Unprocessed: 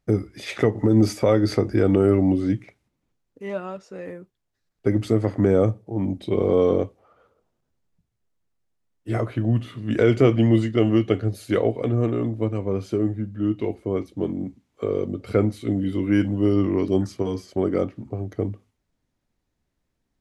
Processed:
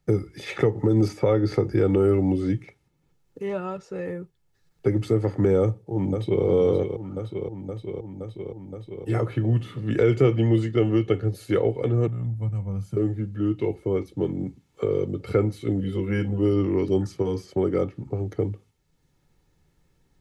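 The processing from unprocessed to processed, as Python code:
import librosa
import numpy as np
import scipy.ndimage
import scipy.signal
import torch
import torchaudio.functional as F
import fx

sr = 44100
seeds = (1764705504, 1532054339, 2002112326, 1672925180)

y = fx.lowpass(x, sr, hz=3900.0, slope=6, at=(1.08, 1.54))
y = fx.echo_throw(y, sr, start_s=5.6, length_s=0.84, ms=520, feedback_pct=70, wet_db=-8.5)
y = fx.curve_eq(y, sr, hz=(170.0, 390.0, 650.0, 3900.0, 9400.0), db=(0, -27, -11, -17, -4), at=(12.07, 12.97))
y = fx.notch_comb(y, sr, f0_hz=300.0, at=(15.8, 16.39))
y = fx.peak_eq(y, sr, hz=160.0, db=12.0, octaves=0.49)
y = y + 0.5 * np.pad(y, (int(2.3 * sr / 1000.0), 0))[:len(y)]
y = fx.band_squash(y, sr, depth_pct=40)
y = y * 10.0 ** (-3.5 / 20.0)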